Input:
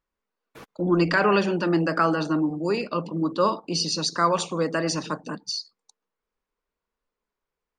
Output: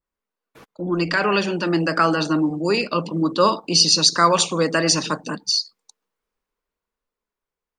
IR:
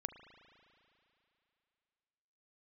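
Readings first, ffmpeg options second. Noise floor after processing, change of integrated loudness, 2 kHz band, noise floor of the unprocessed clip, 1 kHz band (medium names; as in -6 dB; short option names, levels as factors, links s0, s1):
under -85 dBFS, +5.5 dB, +4.0 dB, under -85 dBFS, +4.0 dB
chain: -af "dynaudnorm=f=270:g=13:m=3.16,adynamicequalizer=threshold=0.0251:dfrequency=1900:dqfactor=0.7:tfrequency=1900:tqfactor=0.7:attack=5:release=100:ratio=0.375:range=3.5:mode=boostabove:tftype=highshelf,volume=0.75"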